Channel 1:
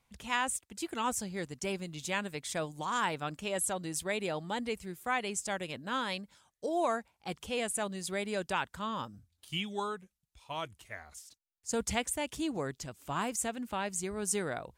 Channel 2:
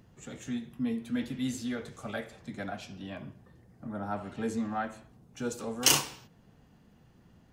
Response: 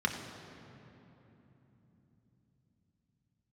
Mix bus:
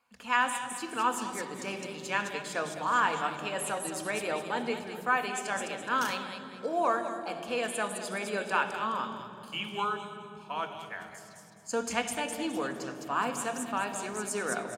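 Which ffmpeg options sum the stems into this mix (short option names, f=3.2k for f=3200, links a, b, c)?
-filter_complex "[0:a]highpass=f=520:p=1,bandreject=f=2k:w=13,volume=0.5dB,asplit=3[a][b][c];[b]volume=-5.5dB[d];[c]volume=-7dB[e];[1:a]adelay=150,volume=-19dB[f];[2:a]atrim=start_sample=2205[g];[d][g]afir=irnorm=-1:irlink=0[h];[e]aecho=0:1:210|420|630|840|1050:1|0.32|0.102|0.0328|0.0105[i];[a][f][h][i]amix=inputs=4:normalize=0"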